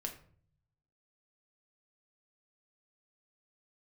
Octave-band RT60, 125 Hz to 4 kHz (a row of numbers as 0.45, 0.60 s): 1.2, 0.75, 0.55, 0.45, 0.40, 0.35 s